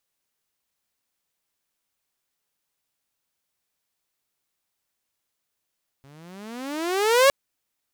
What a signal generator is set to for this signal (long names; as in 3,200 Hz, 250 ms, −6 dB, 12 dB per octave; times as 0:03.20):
pitch glide with a swell saw, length 1.26 s, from 134 Hz, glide +25 semitones, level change +36 dB, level −9.5 dB